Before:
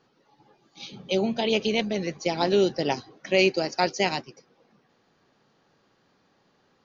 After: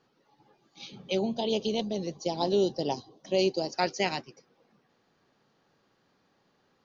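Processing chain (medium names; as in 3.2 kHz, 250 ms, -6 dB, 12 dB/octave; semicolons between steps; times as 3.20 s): 1.19–3.74 s: high-order bell 1.8 kHz -14.5 dB 1.2 oct; trim -4 dB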